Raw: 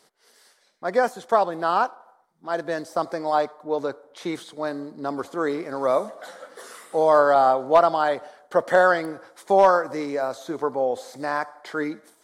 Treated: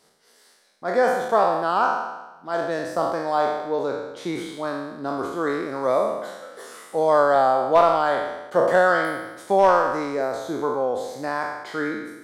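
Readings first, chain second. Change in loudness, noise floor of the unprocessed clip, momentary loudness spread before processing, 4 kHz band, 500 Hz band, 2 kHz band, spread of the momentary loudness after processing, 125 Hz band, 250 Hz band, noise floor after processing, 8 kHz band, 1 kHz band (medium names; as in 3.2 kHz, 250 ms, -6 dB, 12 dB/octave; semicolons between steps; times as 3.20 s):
+0.5 dB, -61 dBFS, 15 LU, +1.5 dB, +0.5 dB, +1.5 dB, 13 LU, +3.0 dB, +1.5 dB, -57 dBFS, no reading, +1.0 dB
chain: spectral sustain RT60 1.07 s; bass shelf 250 Hz +5.5 dB; trim -2.5 dB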